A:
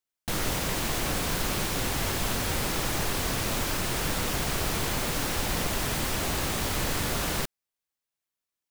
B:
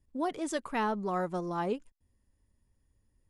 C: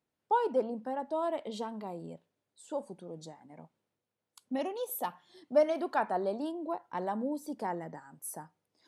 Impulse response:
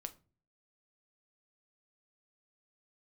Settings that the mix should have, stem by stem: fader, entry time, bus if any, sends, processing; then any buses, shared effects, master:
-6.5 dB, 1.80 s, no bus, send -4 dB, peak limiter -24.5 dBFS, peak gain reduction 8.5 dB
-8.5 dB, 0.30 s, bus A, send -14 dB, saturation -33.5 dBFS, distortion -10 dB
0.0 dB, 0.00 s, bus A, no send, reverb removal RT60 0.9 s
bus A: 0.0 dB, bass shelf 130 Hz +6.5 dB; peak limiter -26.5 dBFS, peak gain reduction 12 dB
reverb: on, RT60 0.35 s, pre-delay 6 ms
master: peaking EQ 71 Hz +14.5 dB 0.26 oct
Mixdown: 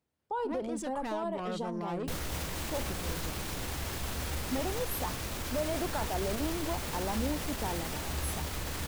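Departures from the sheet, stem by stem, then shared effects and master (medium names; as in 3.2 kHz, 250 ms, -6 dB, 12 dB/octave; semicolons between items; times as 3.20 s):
stem B -8.5 dB -> -2.0 dB; stem C: missing reverb removal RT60 0.9 s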